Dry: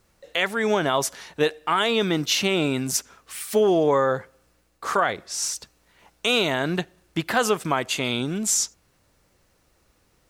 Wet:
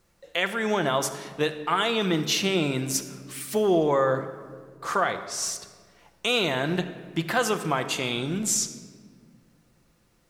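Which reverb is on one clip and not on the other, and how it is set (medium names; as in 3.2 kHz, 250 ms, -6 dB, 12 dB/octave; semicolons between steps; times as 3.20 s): simulated room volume 2500 m³, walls mixed, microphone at 0.82 m; trim -3 dB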